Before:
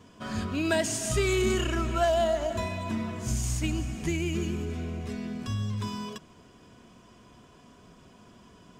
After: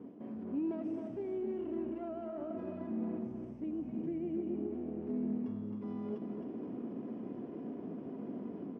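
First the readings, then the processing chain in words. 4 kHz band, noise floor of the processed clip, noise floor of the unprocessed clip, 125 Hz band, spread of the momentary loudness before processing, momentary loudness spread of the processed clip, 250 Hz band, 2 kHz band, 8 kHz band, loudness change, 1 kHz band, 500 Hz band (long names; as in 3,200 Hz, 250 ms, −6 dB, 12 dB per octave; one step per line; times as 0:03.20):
below −35 dB, −46 dBFS, −55 dBFS, −17.0 dB, 10 LU, 6 LU, −3.5 dB, below −25 dB, below −40 dB, −10.5 dB, −17.5 dB, −10.5 dB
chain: lower of the sound and its delayed copy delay 0.37 ms
reversed playback
downward compressor 6 to 1, threshold −42 dBFS, peak gain reduction 18.5 dB
reversed playback
brickwall limiter −42 dBFS, peak gain reduction 11 dB
automatic gain control gain up to 6 dB
four-pole ladder band-pass 330 Hz, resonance 40%
on a send: single-tap delay 264 ms −6.5 dB
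on the sum: level +17.5 dB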